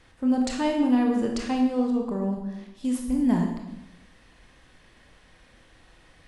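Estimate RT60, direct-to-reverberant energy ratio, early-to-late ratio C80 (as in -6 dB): 0.95 s, 1.0 dB, 6.5 dB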